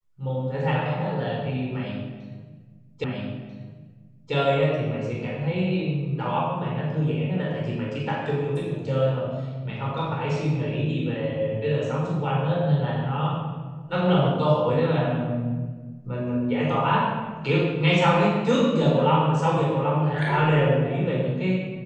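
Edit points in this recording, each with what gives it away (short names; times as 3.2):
3.04 repeat of the last 1.29 s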